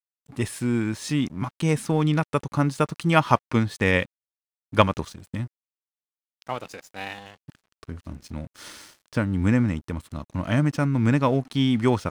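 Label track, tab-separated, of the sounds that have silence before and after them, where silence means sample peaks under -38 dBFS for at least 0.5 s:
4.730000	5.470000	sound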